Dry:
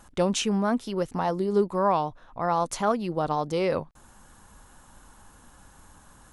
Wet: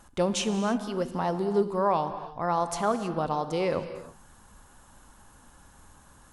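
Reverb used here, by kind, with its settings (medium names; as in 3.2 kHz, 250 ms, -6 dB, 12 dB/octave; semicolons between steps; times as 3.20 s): gated-style reverb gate 350 ms flat, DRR 9.5 dB; trim -2 dB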